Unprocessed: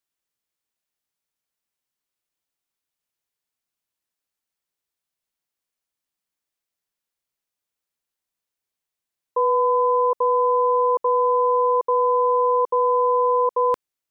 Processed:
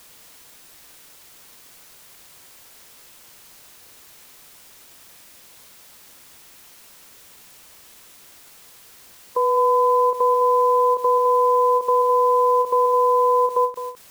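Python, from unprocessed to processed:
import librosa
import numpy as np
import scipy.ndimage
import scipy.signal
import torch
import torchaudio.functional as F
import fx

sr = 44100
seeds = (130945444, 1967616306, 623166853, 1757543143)

y = fx.bin_compress(x, sr, power=0.6)
y = fx.quant_dither(y, sr, seeds[0], bits=8, dither='triangular')
y = y + 10.0 ** (-10.5 / 20.0) * np.pad(y, (int(209 * sr / 1000.0), 0))[:len(y)]
y = fx.end_taper(y, sr, db_per_s=220.0)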